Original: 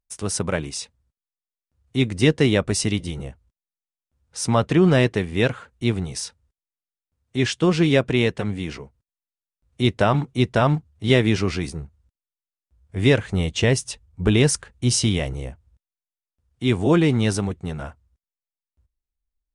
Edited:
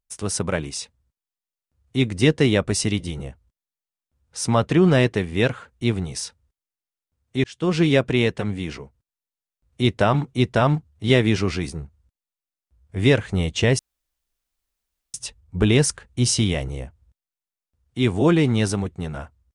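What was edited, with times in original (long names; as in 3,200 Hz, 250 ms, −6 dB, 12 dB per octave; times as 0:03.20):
0:07.44–0:07.78: fade in linear
0:13.79: splice in room tone 1.35 s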